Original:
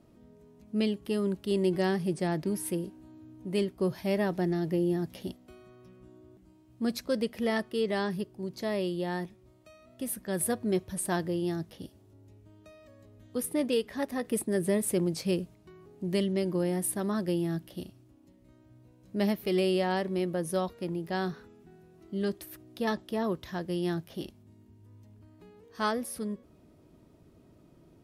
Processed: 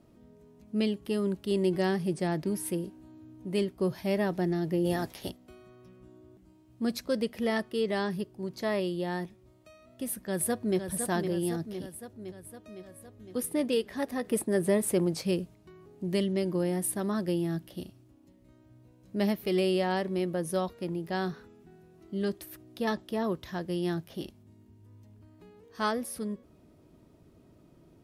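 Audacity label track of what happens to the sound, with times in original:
4.840000	5.290000	ceiling on every frequency bin ceiling under each frame's peak by 17 dB
8.260000	8.800000	dynamic equaliser 1,300 Hz, up to +6 dB, over −49 dBFS, Q 0.86
10.170000	10.790000	delay throw 510 ms, feedback 65%, level −7 dB
14.260000	15.220000	parametric band 890 Hz +4.5 dB 2 octaves

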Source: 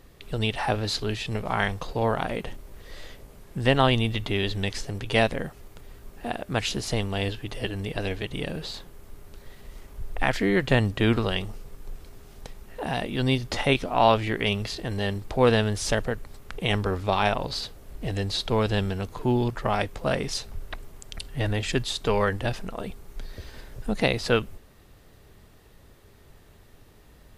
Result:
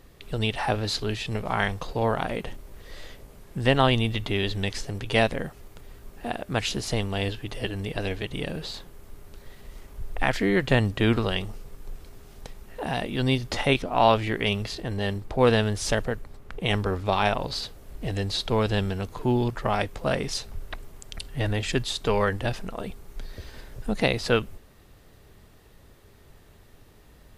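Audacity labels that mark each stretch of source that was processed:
13.820000	17.060000	one half of a high-frequency compander decoder only

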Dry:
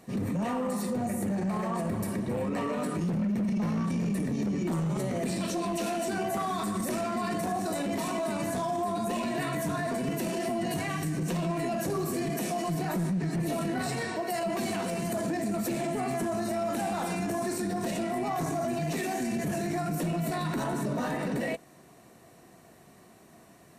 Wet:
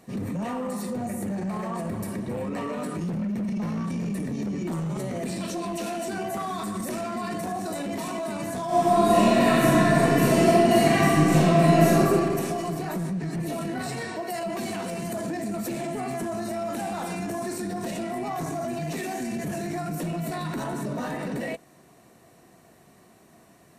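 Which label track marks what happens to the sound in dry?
8.660000	11.990000	thrown reverb, RT60 2.3 s, DRR −11.5 dB

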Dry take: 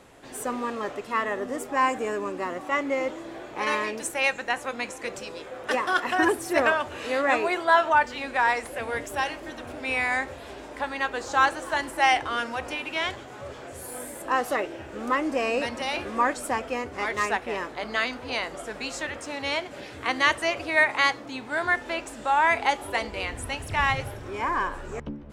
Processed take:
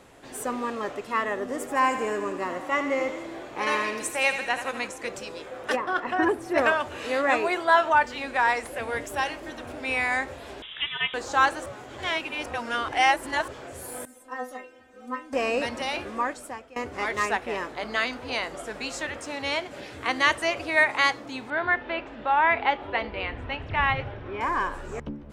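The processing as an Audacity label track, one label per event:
1.420000	4.880000	feedback echo with a high-pass in the loop 82 ms, feedback 60%, level −9 dB
5.750000	6.570000	low-pass filter 1,100 Hz → 2,000 Hz 6 dB per octave
10.620000	11.140000	voice inversion scrambler carrier 3,700 Hz
11.660000	13.480000	reverse
14.050000	15.330000	stiff-string resonator 250 Hz, decay 0.25 s, inharmonicity 0.002
15.830000	16.760000	fade out, to −21 dB
21.500000	24.410000	low-pass filter 3,400 Hz 24 dB per octave

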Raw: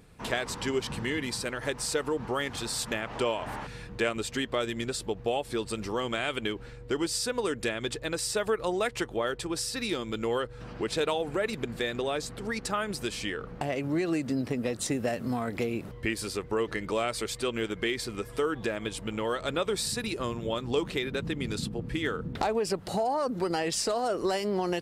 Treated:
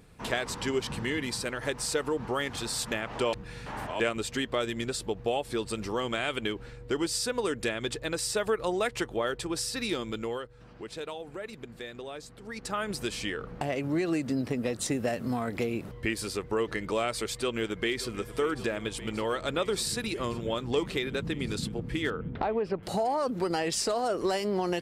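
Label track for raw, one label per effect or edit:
3.330000	4.000000	reverse
10.040000	12.890000	duck −10 dB, fades 0.44 s
17.330000	18.090000	delay throw 580 ms, feedback 85%, level −15 dB
22.100000	22.830000	high-frequency loss of the air 380 metres

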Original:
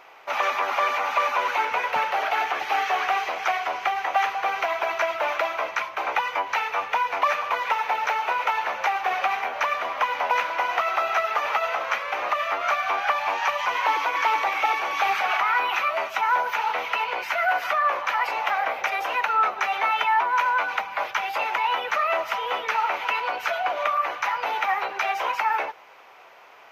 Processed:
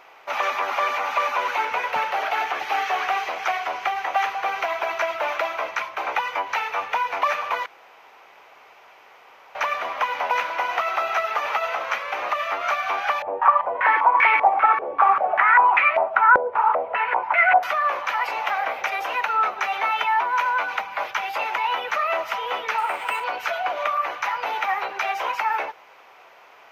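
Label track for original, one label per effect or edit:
7.660000	9.550000	fill with room tone
13.220000	17.630000	low-pass on a step sequencer 5.1 Hz 500–2,200 Hz
22.780000	23.240000	linearly interpolated sample-rate reduction rate divided by 4×

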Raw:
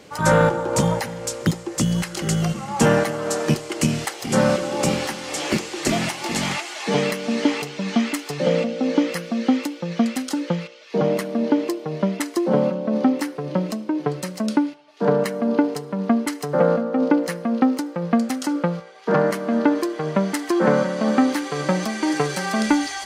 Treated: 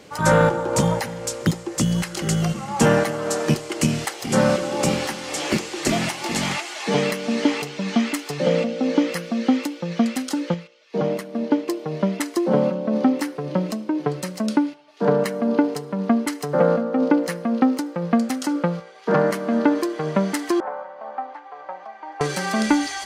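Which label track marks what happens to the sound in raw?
10.540000	11.680000	expander for the loud parts, over −34 dBFS
20.600000	22.210000	four-pole ladder band-pass 890 Hz, resonance 60%

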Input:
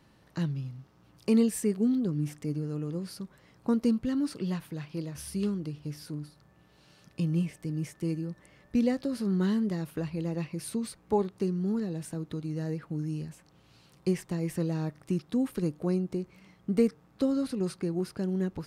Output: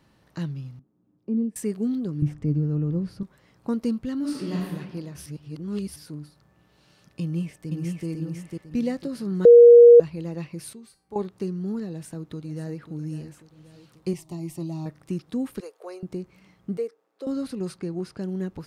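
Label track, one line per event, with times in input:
0.790000	1.560000	resonant band-pass 260 Hz, Q 2.3
2.220000	3.230000	RIAA equalisation playback
4.180000	4.720000	thrown reverb, RT60 1.3 s, DRR −4 dB
5.260000	5.960000	reverse
7.210000	8.070000	delay throw 500 ms, feedback 35%, level −2.5 dB
9.450000	10.000000	beep over 475 Hz −6 dBFS
10.730000	11.160000	tuned comb filter 390 Hz, decay 0.35 s, mix 80%
11.900000	12.890000	delay throw 540 ms, feedback 55%, level −12.5 dB
14.130000	14.860000	phaser with its sweep stopped centre 320 Hz, stages 8
15.600000	16.030000	elliptic high-pass filter 410 Hz
16.770000	17.270000	four-pole ladder high-pass 370 Hz, resonance 50%
17.780000	18.210000	low-pass filter 8,700 Hz

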